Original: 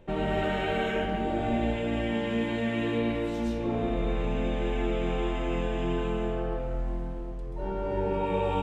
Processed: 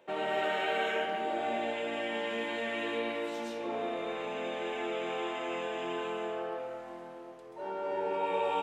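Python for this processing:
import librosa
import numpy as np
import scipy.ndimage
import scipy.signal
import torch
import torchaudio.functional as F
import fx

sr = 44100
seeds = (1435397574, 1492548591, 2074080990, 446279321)

y = scipy.signal.sosfilt(scipy.signal.butter(2, 510.0, 'highpass', fs=sr, output='sos'), x)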